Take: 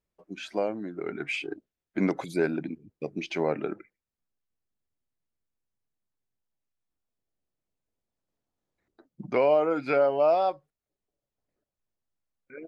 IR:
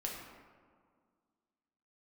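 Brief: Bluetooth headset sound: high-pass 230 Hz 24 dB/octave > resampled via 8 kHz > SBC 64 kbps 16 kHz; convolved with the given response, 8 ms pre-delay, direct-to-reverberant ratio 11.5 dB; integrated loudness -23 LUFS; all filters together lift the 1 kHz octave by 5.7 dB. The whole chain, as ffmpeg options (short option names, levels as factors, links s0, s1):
-filter_complex "[0:a]equalizer=f=1000:t=o:g=8.5,asplit=2[s0][s1];[1:a]atrim=start_sample=2205,adelay=8[s2];[s1][s2]afir=irnorm=-1:irlink=0,volume=0.237[s3];[s0][s3]amix=inputs=2:normalize=0,highpass=f=230:w=0.5412,highpass=f=230:w=1.3066,aresample=8000,aresample=44100,volume=1.26" -ar 16000 -c:a sbc -b:a 64k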